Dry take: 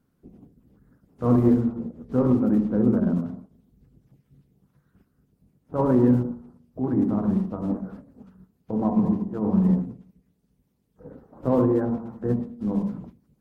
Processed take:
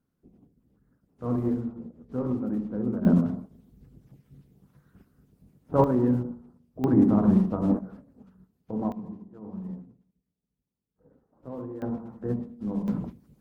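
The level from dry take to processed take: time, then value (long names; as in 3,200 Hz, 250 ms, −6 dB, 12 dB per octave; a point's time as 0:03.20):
−8.5 dB
from 0:03.05 +4 dB
from 0:05.84 −5 dB
from 0:06.84 +3 dB
from 0:07.79 −5 dB
from 0:08.92 −17 dB
from 0:11.82 −5 dB
from 0:12.88 +5.5 dB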